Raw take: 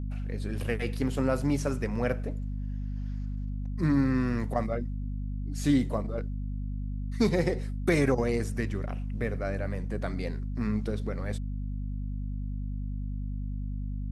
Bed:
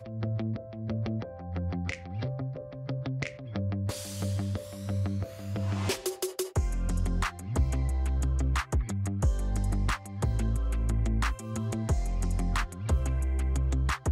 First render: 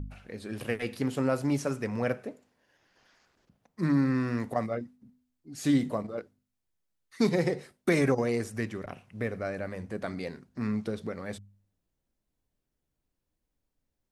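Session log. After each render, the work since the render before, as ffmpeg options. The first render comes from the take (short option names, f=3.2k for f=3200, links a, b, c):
-af "bandreject=f=50:t=h:w=4,bandreject=f=100:t=h:w=4,bandreject=f=150:t=h:w=4,bandreject=f=200:t=h:w=4,bandreject=f=250:t=h:w=4"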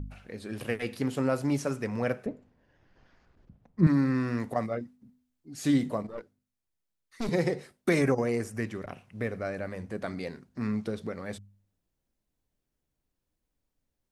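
-filter_complex "[0:a]asettb=1/sr,asplit=3[a][b][c];[a]atrim=end=2.264[d];[b]atrim=start=2.26:end=3.87,asetpts=PTS-STARTPTS,afade=t=in:d=0.004:c=qsin,afade=t=out:st=1.606:d=0.004:c=qsin,aemphasis=mode=reproduction:type=riaa[e];[c]atrim=start=3.866[f];[d][e]acrossfade=d=0.004:c1=hsin:c2=qsin[g];[g][f]acrossfade=d=0.004:c1=qsin:c2=hsin,asettb=1/sr,asplit=3[h][i][j];[h]atrim=end=6.074[k];[i]atrim=start=6.07:end=7.29,asetpts=PTS-STARTPTS,afade=t=in:d=0.004:c=qsin,afade=t=out:st=1.216:d=0.004:c=qsin,aeval=exprs='(tanh(28.2*val(0)+0.65)-tanh(0.65))/28.2':c=same[l];[j]atrim=start=7.286[m];[k][l]acrossfade=d=0.004:c1=hsin:c2=qsin[n];[n][m]acrossfade=d=0.004:c1=qsin:c2=hsin,asettb=1/sr,asplit=3[o][p][q];[o]atrim=end=8.024[r];[p]atrim=start=8.02:end=8.65,asetpts=PTS-STARTPTS,afade=t=in:d=0.004:c=qsin,afade=t=out:st=0.626:d=0.004:c=qsin,equalizer=f=3.8k:t=o:w=0.51:g=-8[s];[q]atrim=start=8.646[t];[r][s]acrossfade=d=0.004:c1=hsin:c2=qsin[u];[u][t]acrossfade=d=0.004:c1=qsin:c2=hsin"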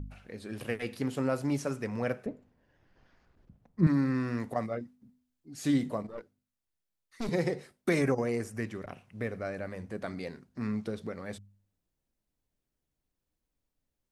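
-af "volume=-2.5dB"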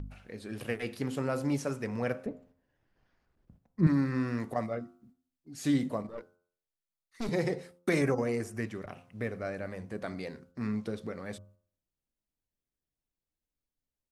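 -af "agate=range=-8dB:threshold=-59dB:ratio=16:detection=peak,bandreject=f=87.88:t=h:w=4,bandreject=f=175.76:t=h:w=4,bandreject=f=263.64:t=h:w=4,bandreject=f=351.52:t=h:w=4,bandreject=f=439.4:t=h:w=4,bandreject=f=527.28:t=h:w=4,bandreject=f=615.16:t=h:w=4,bandreject=f=703.04:t=h:w=4,bandreject=f=790.92:t=h:w=4,bandreject=f=878.8:t=h:w=4,bandreject=f=966.68:t=h:w=4,bandreject=f=1.05456k:t=h:w=4,bandreject=f=1.14244k:t=h:w=4,bandreject=f=1.23032k:t=h:w=4,bandreject=f=1.3182k:t=h:w=4,bandreject=f=1.40608k:t=h:w=4,bandreject=f=1.49396k:t=h:w=4"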